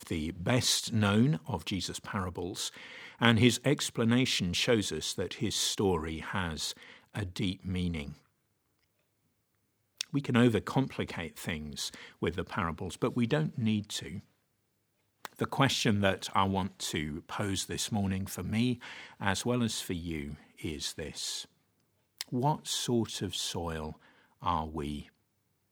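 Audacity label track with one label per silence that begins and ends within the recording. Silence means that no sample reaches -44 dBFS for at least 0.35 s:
8.130000	9.990000	silence
14.190000	15.250000	silence
21.450000	22.190000	silence
23.930000	24.420000	silence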